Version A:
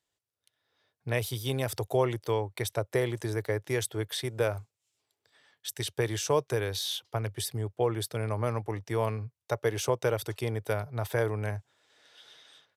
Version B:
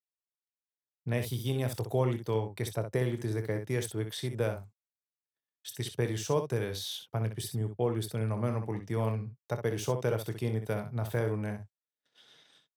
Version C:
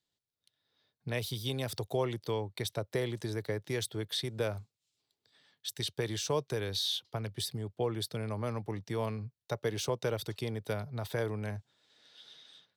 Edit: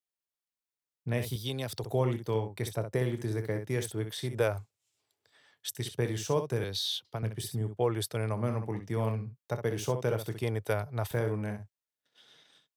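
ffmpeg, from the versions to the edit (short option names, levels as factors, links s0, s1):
-filter_complex "[2:a]asplit=2[s0][s1];[0:a]asplit=3[s2][s3][s4];[1:a]asplit=6[s5][s6][s7][s8][s9][s10];[s5]atrim=end=1.362[s11];[s0]atrim=start=1.358:end=1.842[s12];[s6]atrim=start=1.838:end=4.382[s13];[s2]atrim=start=4.378:end=5.752[s14];[s7]atrim=start=5.748:end=6.642[s15];[s1]atrim=start=6.638:end=7.232[s16];[s8]atrim=start=7.228:end=7.89[s17];[s3]atrim=start=7.73:end=8.42[s18];[s9]atrim=start=8.26:end=10.432[s19];[s4]atrim=start=10.428:end=11.112[s20];[s10]atrim=start=11.108[s21];[s11][s12]acrossfade=d=0.004:c1=hsin:c2=hsin[s22];[s22][s13]acrossfade=d=0.004:c1=hsin:c2=hsin[s23];[s23][s14]acrossfade=d=0.004:c1=hsin:c2=hsin[s24];[s24][s15]acrossfade=d=0.004:c1=hsin:c2=hsin[s25];[s25][s16]acrossfade=d=0.004:c1=hsin:c2=hsin[s26];[s26][s17]acrossfade=d=0.004:c1=hsin:c2=hsin[s27];[s27][s18]acrossfade=d=0.16:c1=tri:c2=tri[s28];[s28][s19]acrossfade=d=0.16:c1=tri:c2=tri[s29];[s29][s20]acrossfade=d=0.004:c1=hsin:c2=hsin[s30];[s30][s21]acrossfade=d=0.004:c1=hsin:c2=hsin"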